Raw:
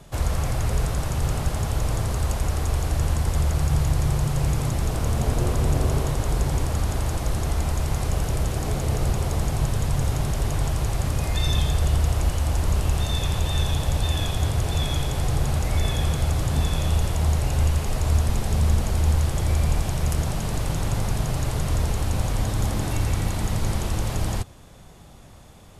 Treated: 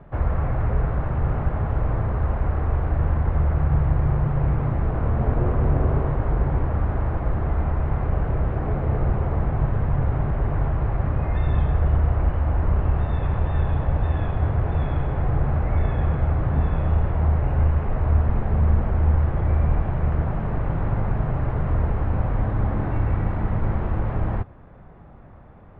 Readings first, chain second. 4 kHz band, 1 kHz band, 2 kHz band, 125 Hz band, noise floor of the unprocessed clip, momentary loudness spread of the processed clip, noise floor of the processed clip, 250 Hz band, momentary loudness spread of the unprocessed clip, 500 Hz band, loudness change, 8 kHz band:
under -20 dB, +1.5 dB, -2.5 dB, +1.5 dB, -45 dBFS, 4 LU, -44 dBFS, +1.5 dB, 4 LU, +1.5 dB, +1.0 dB, under -40 dB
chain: LPF 1800 Hz 24 dB/oct; gain +1.5 dB

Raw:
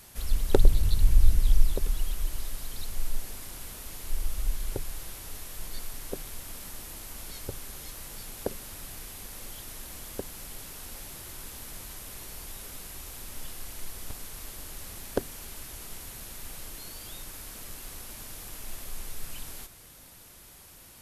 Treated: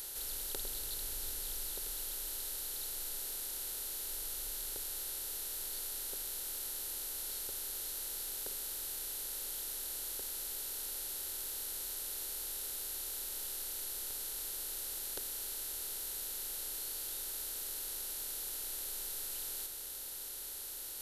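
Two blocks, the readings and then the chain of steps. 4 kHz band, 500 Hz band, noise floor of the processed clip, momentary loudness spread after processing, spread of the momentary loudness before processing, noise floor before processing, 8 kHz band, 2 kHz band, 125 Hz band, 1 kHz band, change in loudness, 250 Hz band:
+0.5 dB, -15.0 dB, -44 dBFS, 0 LU, 13 LU, -51 dBFS, +3.0 dB, -5.0 dB, -25.5 dB, -8.0 dB, -2.5 dB, -17.0 dB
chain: per-bin compression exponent 0.4; pre-emphasis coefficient 0.97; gain -3.5 dB

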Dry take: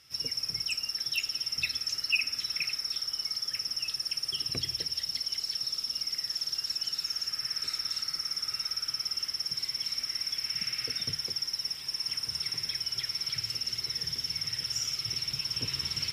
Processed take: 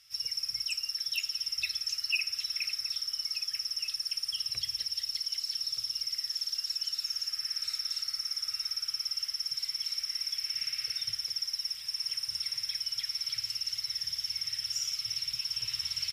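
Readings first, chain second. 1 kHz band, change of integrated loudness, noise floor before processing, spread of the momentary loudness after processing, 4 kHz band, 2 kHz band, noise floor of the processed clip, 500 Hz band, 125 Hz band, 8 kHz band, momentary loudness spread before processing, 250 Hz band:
n/a, -1.0 dB, -42 dBFS, 1 LU, -1.0 dB, -3.5 dB, -43 dBFS, under -15 dB, under -10 dB, -0.5 dB, 1 LU, under -15 dB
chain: passive tone stack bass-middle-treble 10-0-10; outdoor echo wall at 210 m, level -8 dB

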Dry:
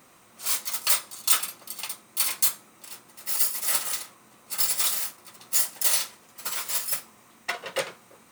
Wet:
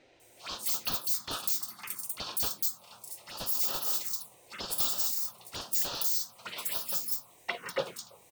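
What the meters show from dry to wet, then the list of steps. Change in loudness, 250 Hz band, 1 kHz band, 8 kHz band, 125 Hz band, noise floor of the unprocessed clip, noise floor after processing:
-5.5 dB, +1.5 dB, -4.5 dB, -9.5 dB, n/a, -56 dBFS, -60 dBFS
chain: wavefolder -18.5 dBFS; envelope phaser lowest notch 180 Hz, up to 2100 Hz, full sweep at -25.5 dBFS; bands offset in time lows, highs 0.2 s, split 4700 Hz

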